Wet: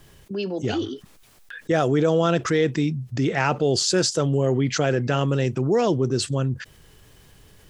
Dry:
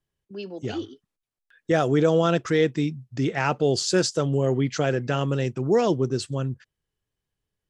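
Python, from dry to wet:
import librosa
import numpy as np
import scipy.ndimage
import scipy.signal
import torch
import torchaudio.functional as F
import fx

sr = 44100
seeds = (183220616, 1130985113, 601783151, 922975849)

y = fx.env_flatten(x, sr, amount_pct=50)
y = y * 10.0 ** (-1.0 / 20.0)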